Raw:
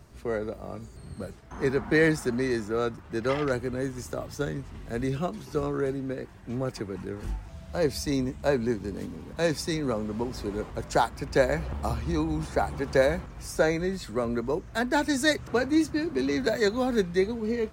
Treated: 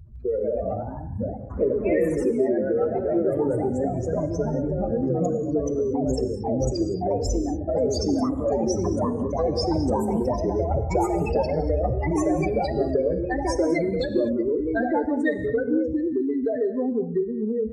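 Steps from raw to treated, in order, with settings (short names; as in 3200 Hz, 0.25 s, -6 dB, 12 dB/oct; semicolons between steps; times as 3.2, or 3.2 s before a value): spectral contrast raised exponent 3; compressor, threshold -29 dBFS, peak gain reduction 11.5 dB; echoes that change speed 0.157 s, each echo +2 st, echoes 3; non-linear reverb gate 0.26 s flat, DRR 8.5 dB; gain +7 dB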